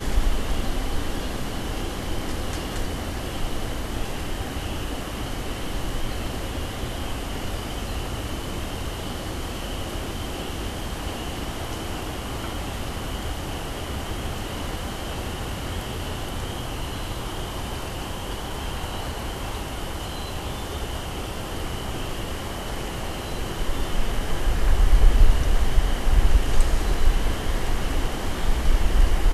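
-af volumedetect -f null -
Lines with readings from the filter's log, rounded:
mean_volume: -22.9 dB
max_volume: -2.5 dB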